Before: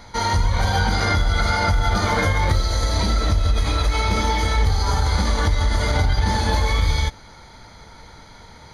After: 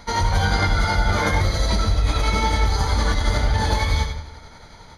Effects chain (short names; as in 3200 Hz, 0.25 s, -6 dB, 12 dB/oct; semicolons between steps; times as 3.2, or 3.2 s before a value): digital reverb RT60 1.6 s, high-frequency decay 0.8×, pre-delay 80 ms, DRR 6 dB; granular stretch 0.57×, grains 0.182 s